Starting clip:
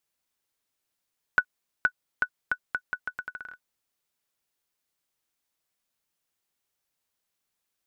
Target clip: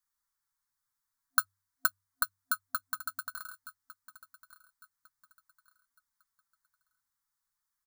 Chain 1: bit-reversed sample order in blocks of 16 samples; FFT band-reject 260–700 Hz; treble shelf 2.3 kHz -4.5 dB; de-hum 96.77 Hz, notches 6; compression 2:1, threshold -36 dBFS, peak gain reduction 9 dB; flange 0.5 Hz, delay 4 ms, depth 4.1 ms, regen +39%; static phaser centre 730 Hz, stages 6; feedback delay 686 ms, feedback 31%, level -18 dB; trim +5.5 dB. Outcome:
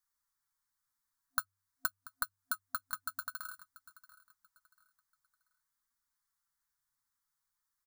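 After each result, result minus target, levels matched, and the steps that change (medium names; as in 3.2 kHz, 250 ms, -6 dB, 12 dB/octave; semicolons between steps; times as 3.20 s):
compression: peak gain reduction +9 dB; echo 467 ms early
remove: compression 2:1, threshold -36 dBFS, peak gain reduction 9 dB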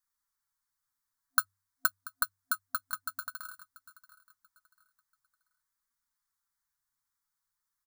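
echo 467 ms early
change: feedback delay 1153 ms, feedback 31%, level -18 dB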